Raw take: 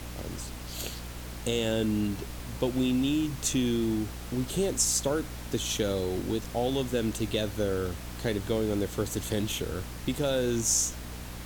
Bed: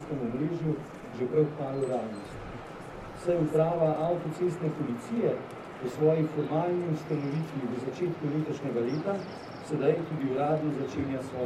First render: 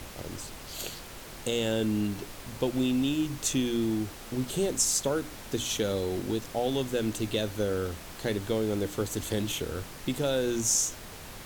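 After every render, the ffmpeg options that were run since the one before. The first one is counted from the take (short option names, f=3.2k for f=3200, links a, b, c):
-af "bandreject=f=60:t=h:w=6,bandreject=f=120:t=h:w=6,bandreject=f=180:t=h:w=6,bandreject=f=240:t=h:w=6,bandreject=f=300:t=h:w=6"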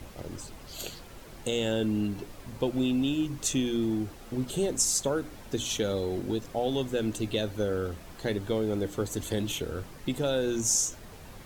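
-af "afftdn=nr=8:nf=-44"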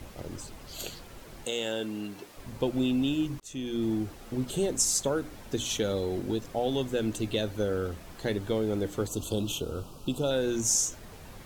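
-filter_complex "[0:a]asettb=1/sr,asplit=3[a][b][c];[a]atrim=end=1.454[d];[b]atrim=start=1.45:end=2.37,asetpts=PTS-STARTPTS,afade=t=in:d=0.004:c=qsin,afade=t=out:st=0.916:d=0.004:c=qsin,highpass=f=520:p=1[e];[c]atrim=start=2.366[f];[d][e]acrossfade=d=0.004:c1=hsin:c2=qsin[g];[g][f]acrossfade=d=0.004:c1=qsin:c2=hsin,asettb=1/sr,asplit=3[h][i][j];[h]atrim=end=9.074[k];[i]atrim=start=9.07:end=10.31,asetpts=PTS-STARTPTS,afade=t=in:d=0.004:c=qsin,afade=t=out:st=1.236:d=0.004:c=qsin,asuperstop=centerf=1900:order=8:qfactor=1.6[l];[j]atrim=start=10.306[m];[k][l]acrossfade=d=0.004:c1=hsin:c2=qsin[n];[n][m]acrossfade=d=0.004:c1=qsin:c2=hsin,asplit=2[o][p];[o]atrim=end=3.4,asetpts=PTS-STARTPTS,afade=t=out:st=3.396:d=0.004:c=hsin[q];[p]atrim=start=3.4,asetpts=PTS-STARTPTS,afade=t=in:d=0.48[r];[q][r]concat=n=2:v=0:a=1"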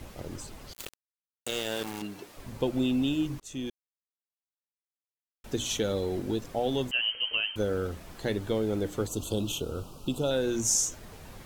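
-filter_complex "[0:a]asettb=1/sr,asplit=3[a][b][c];[a]atrim=end=0.734[d];[b]atrim=start=0.73:end=2.02,asetpts=PTS-STARTPTS,afade=t=in:d=0.004:c=qsin,afade=t=out:st=1.286:d=0.004:c=qsin,aeval=exprs='val(0)*gte(abs(val(0)),0.0251)':c=same[e];[c]atrim=start=2.016[f];[d][e]acrossfade=d=0.004:c1=hsin:c2=qsin[g];[g][f]acrossfade=d=0.004:c1=qsin:c2=hsin,asettb=1/sr,asplit=3[h][i][j];[h]atrim=end=6.914[k];[i]atrim=start=6.91:end=7.56,asetpts=PTS-STARTPTS,afade=t=in:d=0.004:c=qsin,afade=t=out:st=0.646:d=0.004:c=qsin,lowpass=f=2.7k:t=q:w=0.5098,lowpass=f=2.7k:t=q:w=0.6013,lowpass=f=2.7k:t=q:w=0.9,lowpass=f=2.7k:t=q:w=2.563,afreqshift=-3200[l];[j]atrim=start=7.556[m];[k][l]acrossfade=d=0.004:c1=hsin:c2=qsin[n];[n][m]acrossfade=d=0.004:c1=qsin:c2=hsin,asplit=3[o][p][q];[o]atrim=end=3.7,asetpts=PTS-STARTPTS,afade=t=out:st=3.696:d=0.004:c=hsin[r];[p]atrim=start=3.7:end=5.44,asetpts=PTS-STARTPTS,volume=0[s];[q]atrim=start=5.44,asetpts=PTS-STARTPTS,afade=t=in:d=0.004:c=hsin[t];[r][s][t]concat=n=3:v=0:a=1"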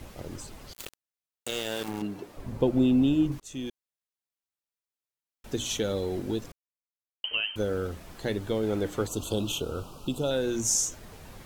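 -filter_complex "[0:a]asettb=1/sr,asplit=3[a][b][c];[a]atrim=end=1.884[d];[b]atrim=start=1.88:end=3.32,asetpts=PTS-STARTPTS,afade=t=in:d=0.004:c=qsin,afade=t=out:st=1.436:d=0.004:c=qsin,tiltshelf=f=1.3k:g=5.5[e];[c]atrim=start=3.316[f];[d][e]acrossfade=d=0.004:c1=hsin:c2=qsin[g];[g][f]acrossfade=d=0.004:c1=qsin:c2=hsin,asettb=1/sr,asplit=3[h][i][j];[h]atrim=end=8.634[k];[i]atrim=start=8.63:end=10.07,asetpts=PTS-STARTPTS,afade=t=in:d=0.004:c=qsin,afade=t=out:st=1.436:d=0.004:c=qsin,equalizer=f=1.4k:t=o:w=2.7:g=4.5[l];[j]atrim=start=10.066[m];[k][l]acrossfade=d=0.004:c1=hsin:c2=qsin[n];[n][m]acrossfade=d=0.004:c1=qsin:c2=hsin,asplit=3[o][p][q];[o]atrim=end=6.52,asetpts=PTS-STARTPTS,afade=t=out:st=6.516:d=0.004:c=hsin[r];[p]atrim=start=6.52:end=7.24,asetpts=PTS-STARTPTS,volume=0[s];[q]atrim=start=7.24,asetpts=PTS-STARTPTS,afade=t=in:d=0.004:c=hsin[t];[r][s][t]concat=n=3:v=0:a=1"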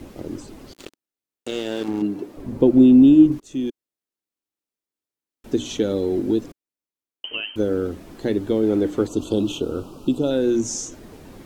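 -filter_complex "[0:a]acrossover=split=7400[a][b];[b]acompressor=threshold=-55dB:ratio=4:attack=1:release=60[c];[a][c]amix=inputs=2:normalize=0,equalizer=f=300:t=o:w=1.3:g=13"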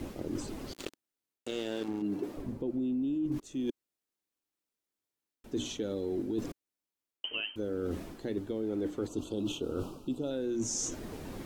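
-af "alimiter=limit=-13dB:level=0:latency=1:release=113,areverse,acompressor=threshold=-32dB:ratio=5,areverse"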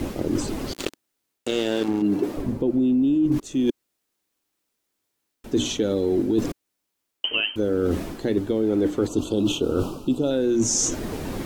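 -af "volume=12dB"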